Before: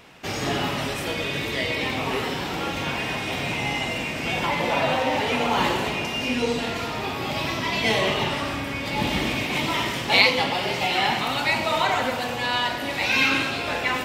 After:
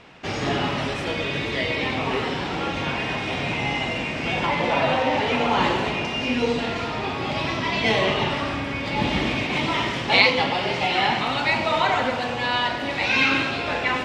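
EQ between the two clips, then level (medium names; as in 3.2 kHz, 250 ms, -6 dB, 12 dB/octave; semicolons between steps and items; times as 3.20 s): distance through air 97 m; +2.0 dB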